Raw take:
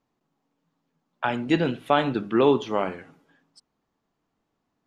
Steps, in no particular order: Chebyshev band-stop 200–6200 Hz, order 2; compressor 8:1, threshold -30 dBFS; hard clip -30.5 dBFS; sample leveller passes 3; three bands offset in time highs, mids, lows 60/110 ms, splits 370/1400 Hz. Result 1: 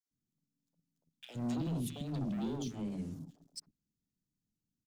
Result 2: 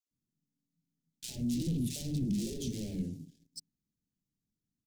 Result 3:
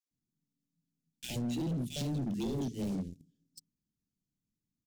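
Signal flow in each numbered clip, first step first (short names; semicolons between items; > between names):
compressor > Chebyshev band-stop > hard clip > sample leveller > three bands offset in time; hard clip > three bands offset in time > compressor > sample leveller > Chebyshev band-stop; three bands offset in time > sample leveller > Chebyshev band-stop > compressor > hard clip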